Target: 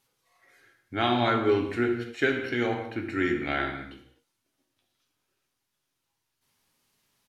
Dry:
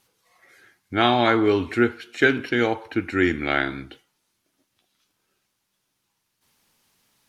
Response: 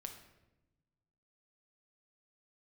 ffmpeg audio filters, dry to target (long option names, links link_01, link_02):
-filter_complex "[0:a]asplit=2[link_01][link_02];[link_02]adelay=17,volume=-12.5dB[link_03];[link_01][link_03]amix=inputs=2:normalize=0[link_04];[1:a]atrim=start_sample=2205,afade=type=out:start_time=0.26:duration=0.01,atrim=end_sample=11907,asetrate=35280,aresample=44100[link_05];[link_04][link_05]afir=irnorm=-1:irlink=0,volume=-3.5dB"